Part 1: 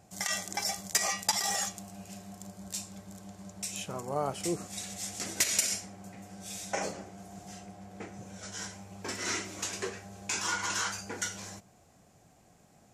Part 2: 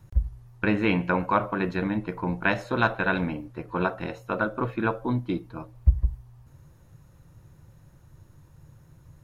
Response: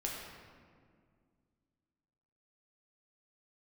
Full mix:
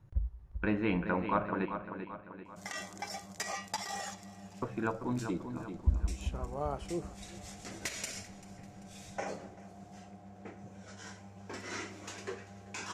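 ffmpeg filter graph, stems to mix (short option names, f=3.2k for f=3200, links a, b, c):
-filter_complex "[0:a]adelay=2450,volume=-4dB,asplit=2[a][b];[b]volume=-20dB[c];[1:a]bandreject=f=60:t=h:w=6,bandreject=f=120:t=h:w=6,volume=-8dB,asplit=3[d][e][f];[d]atrim=end=1.66,asetpts=PTS-STARTPTS,afade=t=out:st=1.656:d=0.004:c=hsin[g];[e]atrim=start=1.66:end=4.62,asetpts=PTS-STARTPTS,volume=0[h];[f]atrim=start=4.62,asetpts=PTS-STARTPTS,afade=t=in:d=0.004:c=hsin[i];[g][h][i]concat=n=3:v=0:a=1,asplit=3[j][k][l];[k]volume=-19.5dB[m];[l]volume=-8dB[n];[2:a]atrim=start_sample=2205[o];[m][o]afir=irnorm=-1:irlink=0[p];[c][n]amix=inputs=2:normalize=0,aecho=0:1:390|780|1170|1560|1950|2340|2730:1|0.47|0.221|0.104|0.0488|0.0229|0.0108[q];[a][j][p][q]amix=inputs=4:normalize=0,lowpass=f=2.3k:p=1"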